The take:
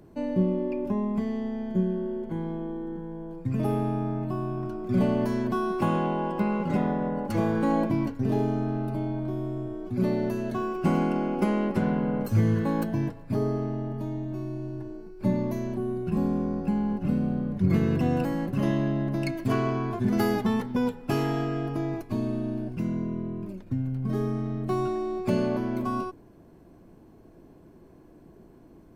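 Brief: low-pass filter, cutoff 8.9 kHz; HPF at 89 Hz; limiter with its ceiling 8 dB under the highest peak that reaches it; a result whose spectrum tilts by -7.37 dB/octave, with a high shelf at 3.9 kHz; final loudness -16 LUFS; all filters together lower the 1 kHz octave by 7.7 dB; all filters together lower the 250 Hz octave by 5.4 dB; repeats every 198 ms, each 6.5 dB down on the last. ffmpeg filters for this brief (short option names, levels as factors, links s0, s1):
-af "highpass=89,lowpass=8900,equalizer=f=250:t=o:g=-6.5,equalizer=f=1000:t=o:g=-9,highshelf=f=3900:g=-8.5,alimiter=limit=0.0708:level=0:latency=1,aecho=1:1:198|396|594|792|990|1188:0.473|0.222|0.105|0.0491|0.0231|0.0109,volume=7.08"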